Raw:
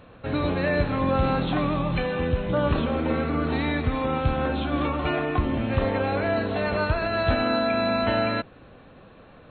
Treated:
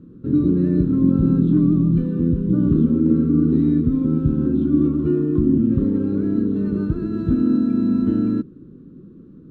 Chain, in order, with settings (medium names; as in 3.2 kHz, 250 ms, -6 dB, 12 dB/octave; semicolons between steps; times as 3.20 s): CVSD coder 64 kbps; FFT filter 100 Hz 0 dB, 160 Hz +12 dB, 360 Hz +11 dB, 710 Hz -30 dB, 1.3 kHz -13 dB, 2.2 kHz -29 dB, 3.8 kHz -20 dB, 5.7 kHz -24 dB, 8.4 kHz -30 dB